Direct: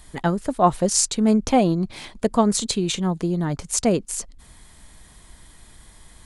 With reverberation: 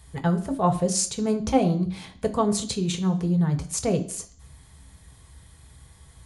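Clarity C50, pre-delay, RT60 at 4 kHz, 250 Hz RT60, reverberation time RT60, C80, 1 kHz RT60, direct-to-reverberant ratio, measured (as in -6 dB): 14.0 dB, 3 ms, 0.55 s, 0.45 s, 0.50 s, 17.5 dB, 0.50 s, 4.0 dB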